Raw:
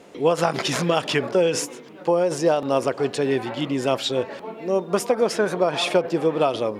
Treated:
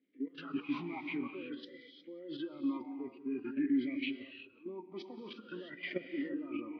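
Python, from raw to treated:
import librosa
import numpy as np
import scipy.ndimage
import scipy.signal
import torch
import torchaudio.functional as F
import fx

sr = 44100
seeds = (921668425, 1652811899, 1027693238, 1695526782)

y = fx.freq_compress(x, sr, knee_hz=1200.0, ratio=1.5)
y = fx.level_steps(y, sr, step_db=15)
y = fx.step_gate(y, sr, bpm=175, pattern='xxx.xxx.xxxxxxx', floor_db=-12.0, edge_ms=4.5)
y = fx.noise_reduce_blind(y, sr, reduce_db=12)
y = fx.echo_feedback(y, sr, ms=180, feedback_pct=40, wet_db=-21.0)
y = fx.rev_gated(y, sr, seeds[0], gate_ms=380, shape='rising', drr_db=7.5)
y = fx.vowel_sweep(y, sr, vowels='i-u', hz=0.5)
y = F.gain(torch.from_numpy(y), 4.0).numpy()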